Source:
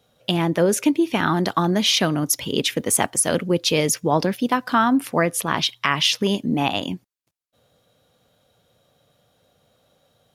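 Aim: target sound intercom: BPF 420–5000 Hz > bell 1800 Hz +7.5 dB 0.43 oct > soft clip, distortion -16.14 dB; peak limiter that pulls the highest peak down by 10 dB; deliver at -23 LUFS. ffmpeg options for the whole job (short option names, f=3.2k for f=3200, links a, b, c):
-af "alimiter=limit=-12.5dB:level=0:latency=1,highpass=420,lowpass=5k,equalizer=f=1.8k:t=o:w=0.43:g=7.5,asoftclip=threshold=-15dB,volume=3.5dB"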